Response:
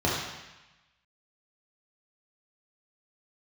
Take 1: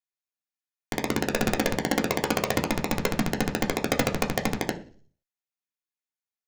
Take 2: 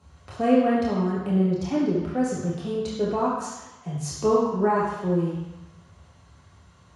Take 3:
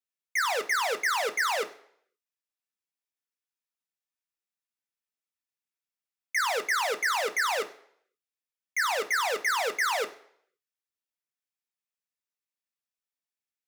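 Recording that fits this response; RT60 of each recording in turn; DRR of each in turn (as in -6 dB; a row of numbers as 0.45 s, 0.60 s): 2; 0.45 s, 1.0 s, no single decay rate; 1.0 dB, -6.0 dB, 6.5 dB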